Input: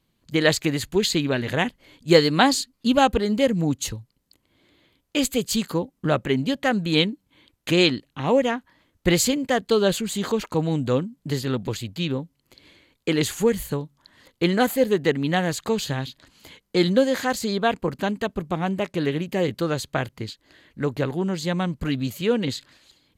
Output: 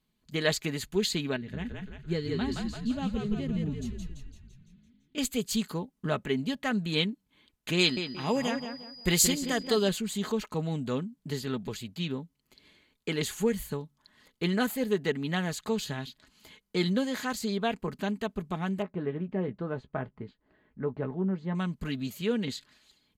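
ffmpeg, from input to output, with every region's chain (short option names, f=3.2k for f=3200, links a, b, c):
-filter_complex "[0:a]asettb=1/sr,asplit=3[a][b][c];[a]atrim=end=1.364[d];[b]atrim=start=1.36:end=5.18,asetpts=PTS-STARTPTS,afade=t=in:d=0.004:c=qsin,afade=t=out:st=3.816:d=0.004:c=qsin,lowpass=f=1.1k:p=1,equalizer=f=870:t=o:w=2.3:g=-13.5,asplit=9[e][f][g][h][i][j][k][l][m];[f]adelay=169,afreqshift=-53,volume=-3dB[n];[g]adelay=338,afreqshift=-106,volume=-7.9dB[o];[h]adelay=507,afreqshift=-159,volume=-12.8dB[p];[i]adelay=676,afreqshift=-212,volume=-17.6dB[q];[j]adelay=845,afreqshift=-265,volume=-22.5dB[r];[k]adelay=1014,afreqshift=-318,volume=-27.4dB[s];[l]adelay=1183,afreqshift=-371,volume=-32.3dB[t];[m]adelay=1352,afreqshift=-424,volume=-37.2dB[u];[e][n][o][p][q][r][s][t][u]amix=inputs=9:normalize=0,atrim=end_sample=168462[v];[c]atrim=start=5.176[w];[d][v]acrossfade=d=0.004:c1=hsin:c2=qsin[x];[x][w]acrossfade=d=0.004:c1=qsin:c2=hsin,asettb=1/sr,asplit=3[y][z][aa];[y]atrim=end=7.794[ab];[z]atrim=start=7.79:end=9.89,asetpts=PTS-STARTPTS,afade=t=in:d=0.004:c=qsin,afade=t=out:st=2.096:d=0.004:c=qsin,highshelf=f=4.7k:g=9.5,aeval=exprs='val(0)+0.01*sin(2*PI*4900*n/s)':c=same,asplit=2[ac][ad];[ad]adelay=177,lowpass=f=2.1k:p=1,volume=-7dB,asplit=2[ae][af];[af]adelay=177,lowpass=f=2.1k:p=1,volume=0.34,asplit=2[ag][ah];[ah]adelay=177,lowpass=f=2.1k:p=1,volume=0.34,asplit=2[ai][aj];[aj]adelay=177,lowpass=f=2.1k:p=1,volume=0.34[ak];[ac][ae][ag][ai][ak]amix=inputs=5:normalize=0,atrim=end_sample=92610[al];[aa]atrim=start=9.886[am];[ab][al]acrossfade=d=0.004:c1=hsin:c2=qsin[an];[an][am]acrossfade=d=0.004:c1=qsin:c2=hsin,asettb=1/sr,asplit=3[ao][ap][aq];[ao]atrim=end=18.824[ar];[ap]atrim=start=18.82:end=21.55,asetpts=PTS-STARTPTS,afade=t=in:d=0.004:c=qsin,afade=t=out:st=2.726:d=0.004:c=qsin,lowpass=1.2k,asplit=2[as][at];[at]adelay=16,volume=-11dB[au];[as][au]amix=inputs=2:normalize=0,atrim=end_sample=120393[av];[aq]atrim=start=21.546[aw];[ar][av]acrossfade=d=0.004:c1=hsin:c2=qsin[ax];[ax][aw]acrossfade=d=0.004:c1=qsin:c2=hsin,equalizer=f=530:t=o:w=0.77:g=-3,aecho=1:1:4.7:0.43,volume=-7.5dB"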